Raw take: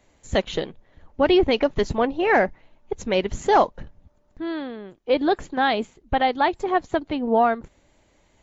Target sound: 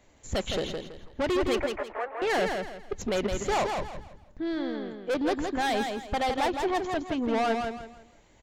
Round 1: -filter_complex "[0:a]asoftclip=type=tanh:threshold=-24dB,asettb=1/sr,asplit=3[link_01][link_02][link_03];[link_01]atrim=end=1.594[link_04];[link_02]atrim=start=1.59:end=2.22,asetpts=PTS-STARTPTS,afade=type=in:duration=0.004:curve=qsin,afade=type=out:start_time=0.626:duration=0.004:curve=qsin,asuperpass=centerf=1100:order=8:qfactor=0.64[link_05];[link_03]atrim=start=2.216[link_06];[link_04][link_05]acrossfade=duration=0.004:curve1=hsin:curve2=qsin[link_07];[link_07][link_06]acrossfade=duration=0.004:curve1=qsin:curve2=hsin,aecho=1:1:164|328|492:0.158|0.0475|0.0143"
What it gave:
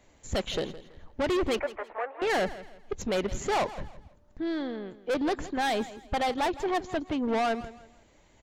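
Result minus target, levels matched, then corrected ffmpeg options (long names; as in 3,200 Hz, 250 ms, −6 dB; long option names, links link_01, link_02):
echo-to-direct −11 dB
-filter_complex "[0:a]asoftclip=type=tanh:threshold=-24dB,asettb=1/sr,asplit=3[link_01][link_02][link_03];[link_01]atrim=end=1.594[link_04];[link_02]atrim=start=1.59:end=2.22,asetpts=PTS-STARTPTS,afade=type=in:duration=0.004:curve=qsin,afade=type=out:start_time=0.626:duration=0.004:curve=qsin,asuperpass=centerf=1100:order=8:qfactor=0.64[link_05];[link_03]atrim=start=2.216[link_06];[link_04][link_05]acrossfade=duration=0.004:curve1=hsin:curve2=qsin[link_07];[link_07][link_06]acrossfade=duration=0.004:curve1=qsin:curve2=hsin,aecho=1:1:164|328|492|656:0.562|0.169|0.0506|0.0152"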